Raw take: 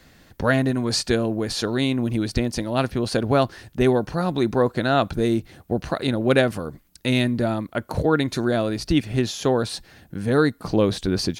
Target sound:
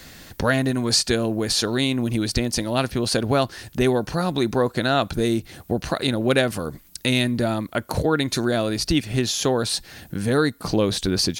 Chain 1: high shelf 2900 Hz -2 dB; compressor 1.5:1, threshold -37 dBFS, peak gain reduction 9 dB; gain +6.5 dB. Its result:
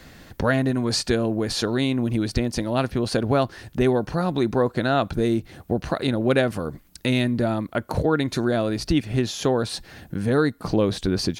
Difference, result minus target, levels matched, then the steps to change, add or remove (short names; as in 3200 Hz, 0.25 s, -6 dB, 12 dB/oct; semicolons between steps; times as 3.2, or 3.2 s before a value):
8000 Hz band -6.5 dB
change: high shelf 2900 Hz +8.5 dB